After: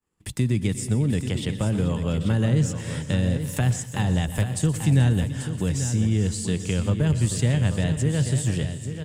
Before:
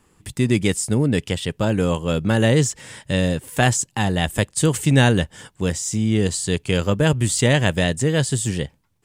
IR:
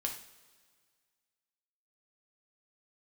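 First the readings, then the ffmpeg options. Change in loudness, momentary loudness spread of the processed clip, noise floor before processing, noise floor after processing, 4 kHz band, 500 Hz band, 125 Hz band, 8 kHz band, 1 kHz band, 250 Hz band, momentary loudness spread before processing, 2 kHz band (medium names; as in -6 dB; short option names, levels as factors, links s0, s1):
-3.5 dB, 5 LU, -62 dBFS, -36 dBFS, -9.0 dB, -9.0 dB, -0.5 dB, -7.0 dB, -10.5 dB, -4.0 dB, 8 LU, -10.5 dB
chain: -filter_complex "[0:a]agate=range=0.0224:threshold=0.00562:ratio=3:detection=peak,acrossover=split=190[s0][s1];[s1]acompressor=threshold=0.0355:ratio=6[s2];[s0][s2]amix=inputs=2:normalize=0,aecho=1:1:354|432|837:0.158|0.168|0.355,asplit=2[s3][s4];[1:a]atrim=start_sample=2205,adelay=121[s5];[s4][s5]afir=irnorm=-1:irlink=0,volume=0.178[s6];[s3][s6]amix=inputs=2:normalize=0"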